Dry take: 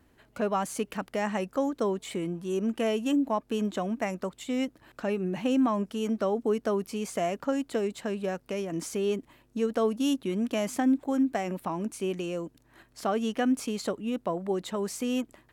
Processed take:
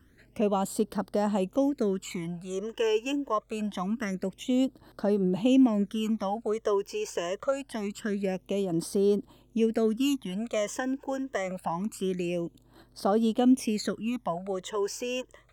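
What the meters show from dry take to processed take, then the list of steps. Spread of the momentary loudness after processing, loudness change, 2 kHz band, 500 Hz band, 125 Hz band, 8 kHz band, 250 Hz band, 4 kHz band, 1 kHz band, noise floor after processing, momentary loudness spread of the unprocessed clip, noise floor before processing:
9 LU, +1.0 dB, −1.0 dB, +1.0 dB, +2.5 dB, +0.5 dB, +1.0 dB, +1.0 dB, −0.5 dB, −61 dBFS, 7 LU, −64 dBFS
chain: all-pass phaser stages 12, 0.25 Hz, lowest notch 210–2,400 Hz
level +3.5 dB

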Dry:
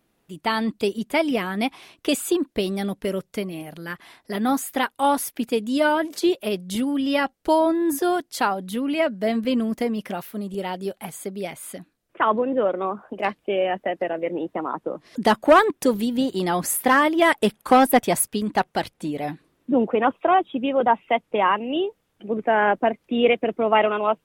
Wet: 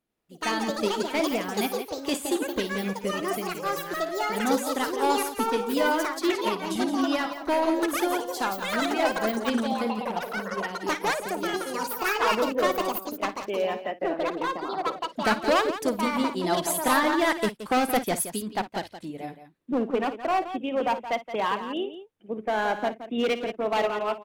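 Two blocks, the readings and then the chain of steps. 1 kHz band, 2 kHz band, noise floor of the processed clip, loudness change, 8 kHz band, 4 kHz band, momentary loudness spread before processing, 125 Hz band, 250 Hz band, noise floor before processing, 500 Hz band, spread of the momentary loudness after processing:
−4.5 dB, −3.0 dB, −50 dBFS, −4.5 dB, −2.5 dB, −1.0 dB, 13 LU, −6.0 dB, −5.0 dB, −71 dBFS, −4.5 dB, 7 LU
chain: dynamic equaliser 5,600 Hz, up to +4 dB, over −41 dBFS, Q 0.95
gain into a clipping stage and back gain 15.5 dB
delay with pitch and tempo change per echo 97 ms, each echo +6 semitones, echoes 2
on a send: loudspeakers that aren't time-aligned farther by 19 metres −11 dB, 59 metres −8 dB
on the sum: expander for the loud parts 1.5 to 1, over −40 dBFS
level −3.5 dB

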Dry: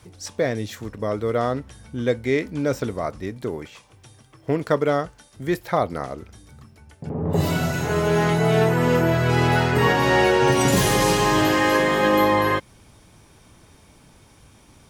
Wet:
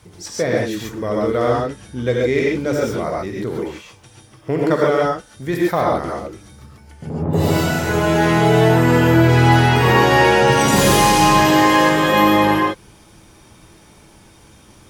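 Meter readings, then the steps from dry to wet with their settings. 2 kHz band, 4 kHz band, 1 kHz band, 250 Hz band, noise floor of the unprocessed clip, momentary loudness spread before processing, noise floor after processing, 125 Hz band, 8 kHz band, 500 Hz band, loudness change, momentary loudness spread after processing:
+5.0 dB, +6.0 dB, +6.5 dB, +6.0 dB, −53 dBFS, 14 LU, −47 dBFS, +5.5 dB, +5.5 dB, +4.0 dB, +5.0 dB, 13 LU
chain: reverb whose tail is shaped and stops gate 160 ms rising, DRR −2.5 dB
level +1 dB

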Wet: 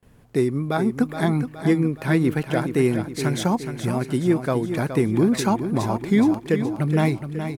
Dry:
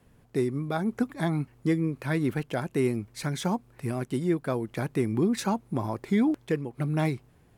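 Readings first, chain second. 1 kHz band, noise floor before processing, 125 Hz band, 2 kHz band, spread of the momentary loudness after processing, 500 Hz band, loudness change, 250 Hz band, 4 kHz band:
+6.5 dB, −60 dBFS, +6.5 dB, +6.5 dB, 5 LU, +6.5 dB, +6.5 dB, +7.0 dB, +6.5 dB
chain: noise gate with hold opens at −53 dBFS
on a send: repeating echo 420 ms, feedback 49%, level −9 dB
on the sum: level +6 dB

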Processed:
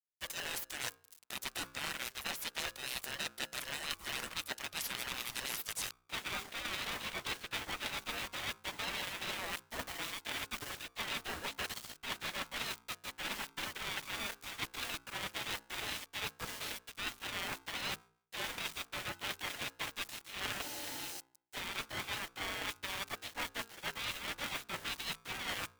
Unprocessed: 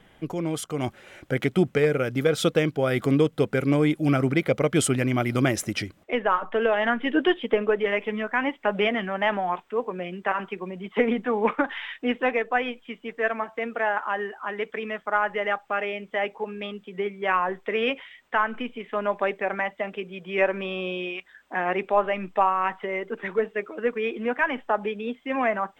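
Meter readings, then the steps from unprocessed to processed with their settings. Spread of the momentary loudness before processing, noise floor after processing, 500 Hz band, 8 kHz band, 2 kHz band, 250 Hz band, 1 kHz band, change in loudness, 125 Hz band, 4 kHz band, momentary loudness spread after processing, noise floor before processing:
9 LU, −69 dBFS, −25.5 dB, −3.5 dB, −11.5 dB, −25.0 dB, −17.5 dB, −14.0 dB, −22.5 dB, −1.5 dB, 3 LU, −58 dBFS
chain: gate on every frequency bin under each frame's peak −25 dB weak
centre clipping without the shift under −57 dBFS
gain on a spectral selection 0:20.61–0:21.39, 380–4,300 Hz −12 dB
high-shelf EQ 3,200 Hz +9 dB
reversed playback
downward compressor 10 to 1, threshold −49 dBFS, peak gain reduction 21 dB
reversed playback
hum removal 61.36 Hz, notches 18
ring modulator with a square carrier 580 Hz
level +12.5 dB

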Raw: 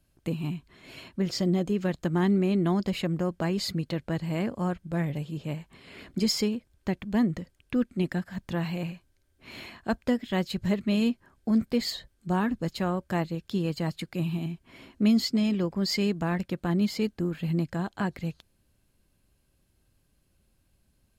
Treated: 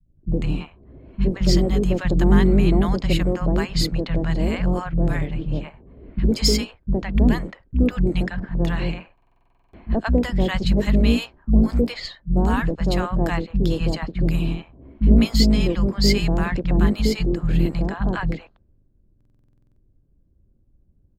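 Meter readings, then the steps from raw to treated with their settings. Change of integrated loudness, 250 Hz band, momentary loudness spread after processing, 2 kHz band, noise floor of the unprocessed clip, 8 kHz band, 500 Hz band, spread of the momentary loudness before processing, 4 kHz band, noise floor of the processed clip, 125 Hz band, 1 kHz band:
+7.5 dB, +5.5 dB, 10 LU, +7.0 dB, −70 dBFS, +7.0 dB, +6.5 dB, 12 LU, +7.0 dB, −61 dBFS, +9.0 dB, +5.0 dB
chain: sub-octave generator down 2 octaves, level +1 dB
three-band delay without the direct sound lows, mids, highs 60/160 ms, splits 190/750 Hz
low-pass that shuts in the quiet parts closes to 380 Hz, open at −22.5 dBFS
buffer that repeats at 0:09.13/0:19.16, samples 2,048, times 12
level +7.5 dB

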